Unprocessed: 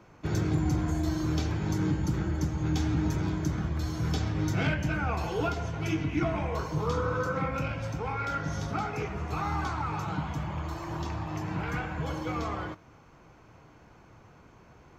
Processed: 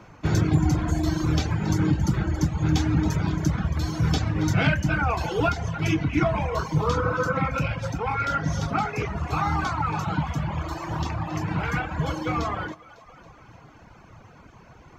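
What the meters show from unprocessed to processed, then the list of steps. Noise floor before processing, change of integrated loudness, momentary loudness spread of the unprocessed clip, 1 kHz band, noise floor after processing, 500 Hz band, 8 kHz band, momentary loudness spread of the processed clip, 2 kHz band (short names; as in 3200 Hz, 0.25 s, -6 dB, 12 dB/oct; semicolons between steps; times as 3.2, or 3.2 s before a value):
-56 dBFS, +6.0 dB, 6 LU, +6.5 dB, -50 dBFS, +4.5 dB, +6.0 dB, 7 LU, +7.0 dB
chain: high shelf 9900 Hz -5.5 dB; split-band echo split 410 Hz, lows 83 ms, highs 0.276 s, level -14 dB; reverb removal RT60 1 s; bell 390 Hz -4 dB 0.75 oct; gain +8.5 dB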